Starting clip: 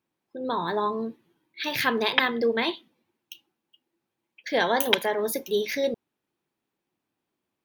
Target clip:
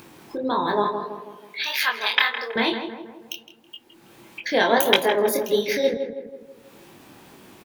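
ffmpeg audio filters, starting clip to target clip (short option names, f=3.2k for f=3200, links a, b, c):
-filter_complex "[0:a]asettb=1/sr,asplit=3[a][b][c];[a]atrim=end=0.844[d];[b]atrim=start=0.84:end=2.56,asetpts=PTS-STARTPTS,afade=t=in:d=0.004:c=qsin,afade=t=out:st=1.716:d=0.004:c=qsin,highpass=1.1k[e];[c]atrim=start=2.556[f];[d][e]acrossfade=d=0.004:c1=hsin:c2=qsin[g];[g][f]acrossfade=d=0.004:c1=qsin:c2=hsin,acompressor=mode=upward:threshold=-28dB:ratio=2.5,flanger=delay=20:depth=6.4:speed=1.6,asplit=2[h][i];[i]adelay=162,lowpass=f=1.5k:p=1,volume=-7dB,asplit=2[j][k];[k]adelay=162,lowpass=f=1.5k:p=1,volume=0.53,asplit=2[l][m];[m]adelay=162,lowpass=f=1.5k:p=1,volume=0.53,asplit=2[n][o];[o]adelay=162,lowpass=f=1.5k:p=1,volume=0.53,asplit=2[p][q];[q]adelay=162,lowpass=f=1.5k:p=1,volume=0.53,asplit=2[r][s];[s]adelay=162,lowpass=f=1.5k:p=1,volume=0.53[t];[h][j][l][n][p][r][t]amix=inputs=7:normalize=0,volume=7dB"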